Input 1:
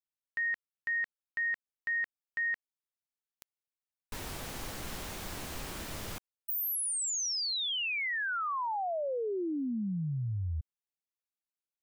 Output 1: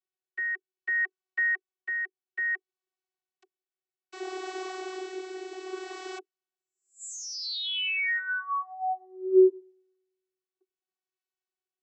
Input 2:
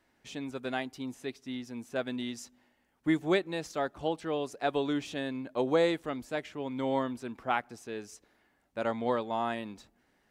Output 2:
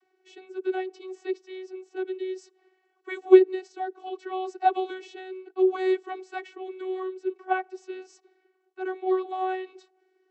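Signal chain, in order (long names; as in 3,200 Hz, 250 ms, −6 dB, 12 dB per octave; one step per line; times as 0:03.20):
rotating-speaker cabinet horn 0.6 Hz
channel vocoder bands 32, saw 374 Hz
level +8.5 dB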